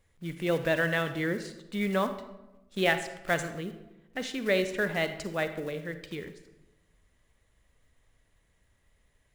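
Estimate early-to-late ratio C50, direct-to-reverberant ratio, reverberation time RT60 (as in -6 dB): 10.5 dB, 9.5 dB, 1.0 s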